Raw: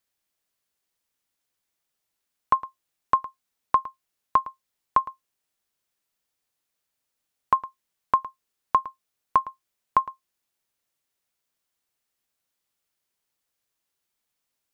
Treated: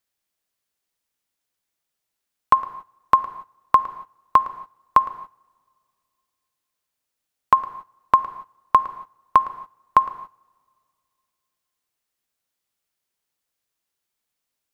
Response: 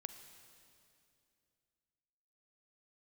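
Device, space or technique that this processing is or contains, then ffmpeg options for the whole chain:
keyed gated reverb: -filter_complex "[0:a]asplit=3[link_01][link_02][link_03];[1:a]atrim=start_sample=2205[link_04];[link_02][link_04]afir=irnorm=-1:irlink=0[link_05];[link_03]apad=whole_len=650002[link_06];[link_05][link_06]sidechaingate=range=-20dB:threshold=-51dB:ratio=16:detection=peak,volume=6dB[link_07];[link_01][link_07]amix=inputs=2:normalize=0,volume=-1.5dB"

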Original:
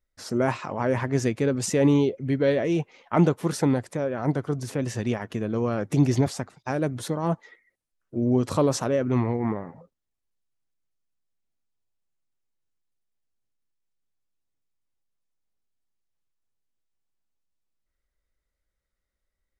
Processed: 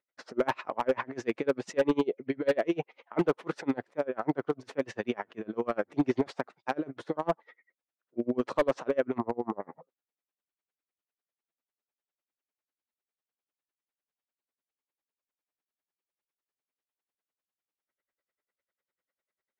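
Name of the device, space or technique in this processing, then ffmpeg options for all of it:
helicopter radio: -filter_complex "[0:a]asettb=1/sr,asplit=3[link_01][link_02][link_03];[link_01]atrim=end=9.184[link_04];[link_02]atrim=start=9.18:end=9.6,asetpts=PTS-STARTPTS,afade=type=in:duration=0.004:curve=qsin,afade=type=out:start_time=0.416:duration=0.004:curve=qsin,lowpass=frequency=1200:width=0.5412,lowpass=frequency=1200:width=1.3066[link_05];[link_03]atrim=start=9.596[link_06];[link_04][link_05]acrossfade=duration=0.004:curve1=hsin:curve2=qsin[link_07];[link_07][link_06]acrossfade=duration=0.004:curve1=qsin:curve2=hsin,highpass=350,lowpass=2800,aeval=exprs='val(0)*pow(10,-31*(0.5-0.5*cos(2*PI*10*n/s))/20)':channel_layout=same,asoftclip=type=hard:threshold=-23dB,volume=5dB"

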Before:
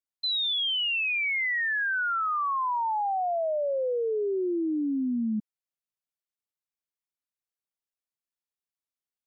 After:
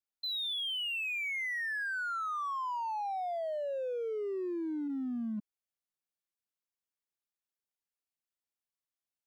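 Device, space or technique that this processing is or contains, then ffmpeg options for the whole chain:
limiter into clipper: -filter_complex "[0:a]asplit=3[link_01][link_02][link_03];[link_01]afade=type=out:start_time=4.87:duration=0.02[link_04];[link_02]bass=frequency=250:gain=-7,treble=frequency=4000:gain=8,afade=type=in:start_time=4.87:duration=0.02,afade=type=out:start_time=5.37:duration=0.02[link_05];[link_03]afade=type=in:start_time=5.37:duration=0.02[link_06];[link_04][link_05][link_06]amix=inputs=3:normalize=0,alimiter=level_in=4.5dB:limit=-24dB:level=0:latency=1,volume=-4.5dB,asoftclip=type=hard:threshold=-29.5dB,volume=-3.5dB"

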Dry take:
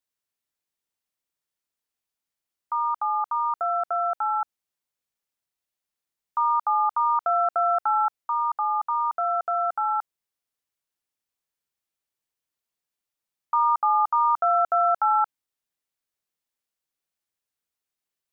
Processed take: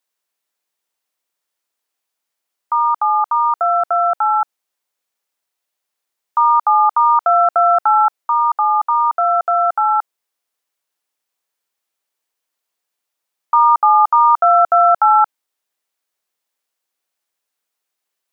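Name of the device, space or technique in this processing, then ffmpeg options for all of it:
filter by subtraction: -filter_complex "[0:a]asplit=2[link_01][link_02];[link_02]lowpass=640,volume=-1[link_03];[link_01][link_03]amix=inputs=2:normalize=0,volume=8dB"

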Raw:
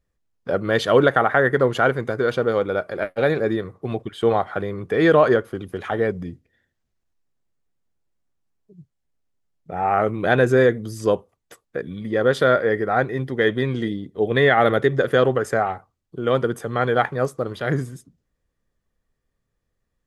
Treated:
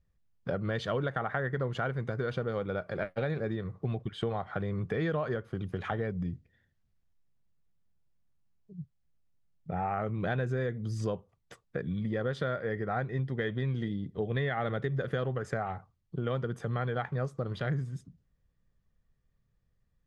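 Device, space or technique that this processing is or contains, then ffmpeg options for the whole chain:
jukebox: -af "lowpass=6100,lowshelf=frequency=220:width_type=q:width=1.5:gain=7,acompressor=threshold=-25dB:ratio=5,volume=-4.5dB"

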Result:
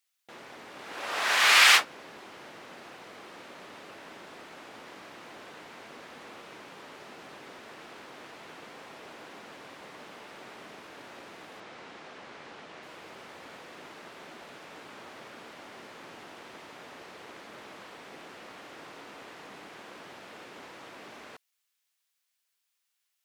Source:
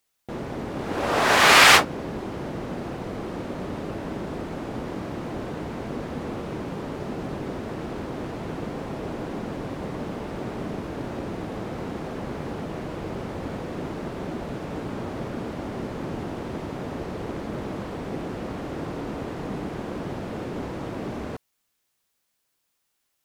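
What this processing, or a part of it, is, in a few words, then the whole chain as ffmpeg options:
filter by subtraction: -filter_complex "[0:a]asettb=1/sr,asplit=3[link_01][link_02][link_03];[link_01]atrim=end=11.604[link_04];[link_02]atrim=start=11.6:end=12.83,asetpts=PTS-STARTPTS,afade=type=in:duration=0.004:curve=qsin,afade=type=out:start_time=1.226:duration=0.004:curve=qsin,lowpass=6700[link_05];[link_03]atrim=start=12.826[link_06];[link_04][link_05]acrossfade=duration=0.004:curve1=hsin:curve2=qsin[link_07];[link_07][link_06]acrossfade=duration=0.004:curve1=qsin:curve2=hsin,asplit=2[link_08][link_09];[link_09]lowpass=2400,volume=-1[link_10];[link_08][link_10]amix=inputs=2:normalize=0,volume=-5dB"

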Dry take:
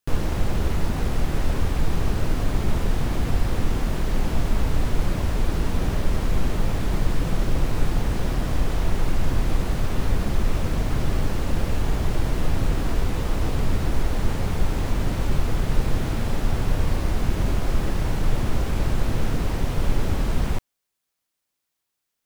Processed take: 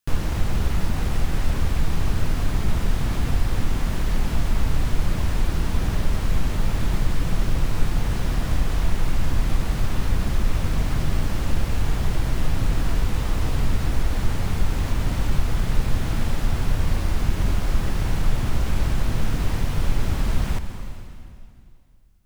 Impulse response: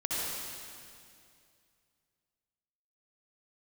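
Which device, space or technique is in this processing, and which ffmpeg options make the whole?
ducked reverb: -filter_complex "[0:a]asplit=3[link_01][link_02][link_03];[1:a]atrim=start_sample=2205[link_04];[link_02][link_04]afir=irnorm=-1:irlink=0[link_05];[link_03]apad=whole_len=981310[link_06];[link_05][link_06]sidechaincompress=threshold=-21dB:ratio=8:attack=16:release=556,volume=-11dB[link_07];[link_01][link_07]amix=inputs=2:normalize=0,equalizer=frequency=440:width_type=o:width=1.8:gain=-5.5"

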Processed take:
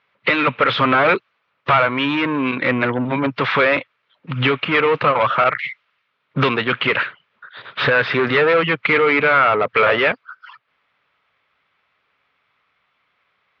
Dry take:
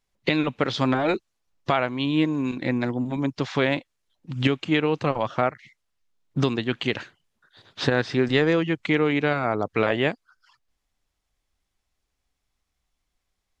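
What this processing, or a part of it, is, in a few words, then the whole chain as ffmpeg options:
overdrive pedal into a guitar cabinet: -filter_complex "[0:a]asplit=2[link_01][link_02];[link_02]highpass=frequency=720:poles=1,volume=27dB,asoftclip=type=tanh:threshold=-5dB[link_03];[link_01][link_03]amix=inputs=2:normalize=0,lowpass=frequency=2100:poles=1,volume=-6dB,highpass=110,equalizer=frequency=120:width_type=q:width=4:gain=4,equalizer=frequency=230:width_type=q:width=4:gain=-5,equalizer=frequency=330:width_type=q:width=4:gain=-9,equalizer=frequency=760:width_type=q:width=4:gain=-7,equalizer=frequency=1300:width_type=q:width=4:gain=6,equalizer=frequency=2300:width_type=q:width=4:gain=4,lowpass=frequency=3500:width=0.5412,lowpass=frequency=3500:width=1.3066,asettb=1/sr,asplit=3[link_04][link_05][link_06];[link_04]atrim=end=5.444[link_07];[link_05]atrim=start=5.44:end=6.49,asetpts=PTS-STARTPTS,afade=type=in:duration=0.004:curve=qsin,afade=type=out:start_time=1.046:duration=0.004:curve=qsin,adynamicequalizer=threshold=0.0282:dfrequency=1700:dqfactor=0.7:tfrequency=1700:tqfactor=0.7:attack=5:release=100:ratio=0.375:range=3.5:mode=boostabove:tftype=highshelf[link_08];[link_06]atrim=start=6.486[link_09];[link_07][link_08]acrossfade=duration=0.004:curve1=hsin:curve2=qsin[link_10];[link_10][link_09]acrossfade=duration=0.004:curve1=qsin:curve2=hsin"

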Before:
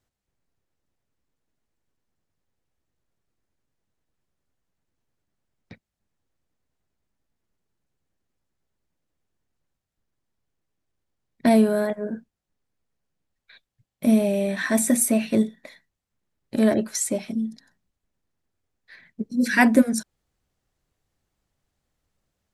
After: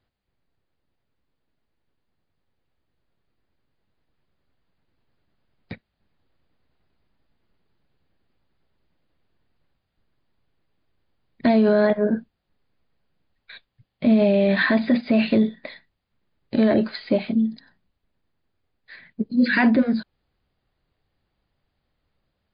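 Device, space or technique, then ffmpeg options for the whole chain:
low-bitrate web radio: -af "dynaudnorm=framelen=310:gausssize=31:maxgain=8dB,alimiter=limit=-13.5dB:level=0:latency=1:release=21,volume=4dB" -ar 11025 -c:a libmp3lame -b:a 32k

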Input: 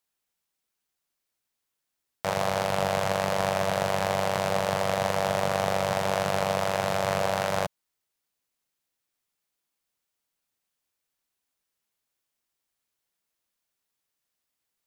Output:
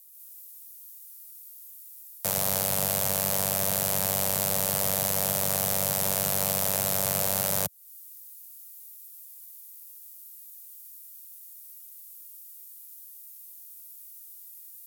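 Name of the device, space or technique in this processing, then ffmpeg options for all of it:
FM broadcast chain: -filter_complex "[0:a]highpass=76,dynaudnorm=framelen=110:gausssize=3:maxgain=6.5dB,acrossover=split=120|430|1300[link_01][link_02][link_03][link_04];[link_01]acompressor=threshold=-37dB:ratio=4[link_05];[link_02]acompressor=threshold=-35dB:ratio=4[link_06];[link_03]acompressor=threshold=-35dB:ratio=4[link_07];[link_04]acompressor=threshold=-41dB:ratio=4[link_08];[link_05][link_06][link_07][link_08]amix=inputs=4:normalize=0,aemphasis=mode=production:type=75fm,alimiter=limit=-16.5dB:level=0:latency=1:release=11,asoftclip=type=hard:threshold=-19.5dB,lowpass=frequency=15000:width=0.5412,lowpass=frequency=15000:width=1.3066,aemphasis=mode=production:type=75fm"

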